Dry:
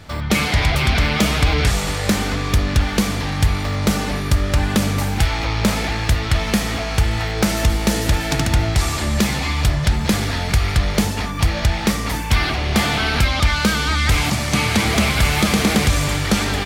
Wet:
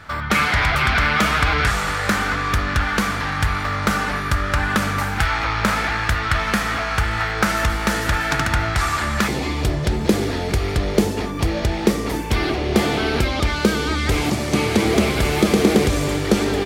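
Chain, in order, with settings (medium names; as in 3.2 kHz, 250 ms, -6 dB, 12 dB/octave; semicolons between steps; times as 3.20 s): peaking EQ 1.4 kHz +14.5 dB 1.2 oct, from 9.28 s 380 Hz; trim -5 dB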